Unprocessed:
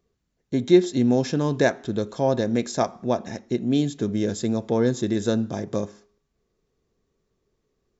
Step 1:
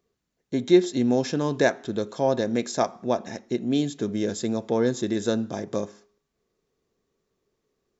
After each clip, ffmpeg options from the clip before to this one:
ffmpeg -i in.wav -af "lowshelf=frequency=130:gain=-11" out.wav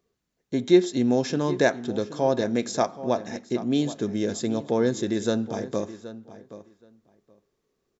ffmpeg -i in.wav -filter_complex "[0:a]asplit=2[link_01][link_02];[link_02]adelay=774,lowpass=frequency=3600:poles=1,volume=-14.5dB,asplit=2[link_03][link_04];[link_04]adelay=774,lowpass=frequency=3600:poles=1,volume=0.16[link_05];[link_01][link_03][link_05]amix=inputs=3:normalize=0" out.wav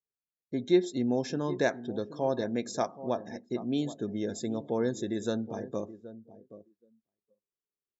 ffmpeg -i in.wav -af "afftdn=noise_reduction=23:noise_floor=-42,volume=-6.5dB" out.wav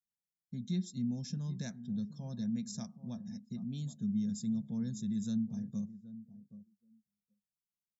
ffmpeg -i in.wav -af "firequalizer=gain_entry='entry(120,0);entry(210,7);entry(300,-26);entry(5100,-3)':delay=0.05:min_phase=1,volume=-1dB" out.wav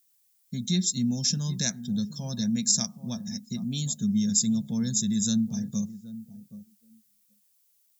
ffmpeg -i in.wav -af "crystalizer=i=6.5:c=0,volume=8dB" out.wav

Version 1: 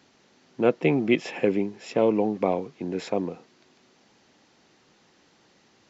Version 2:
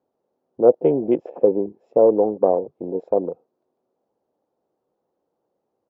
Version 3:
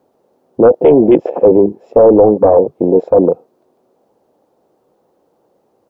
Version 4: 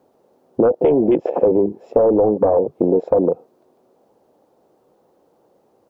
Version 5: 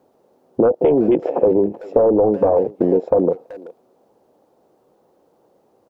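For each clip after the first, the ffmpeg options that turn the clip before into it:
ffmpeg -i in.wav -af "afwtdn=0.0355,firequalizer=gain_entry='entry(210,0);entry(500,13);entry(1900,-16)':delay=0.05:min_phase=1,volume=-3dB" out.wav
ffmpeg -i in.wav -af "apsyclip=18.5dB,volume=-1.5dB" out.wav
ffmpeg -i in.wav -af "acompressor=threshold=-12dB:ratio=6" out.wav
ffmpeg -i in.wav -filter_complex "[0:a]asplit=2[link_01][link_02];[link_02]adelay=380,highpass=300,lowpass=3400,asoftclip=type=hard:threshold=-11.5dB,volume=-18dB[link_03];[link_01][link_03]amix=inputs=2:normalize=0" out.wav

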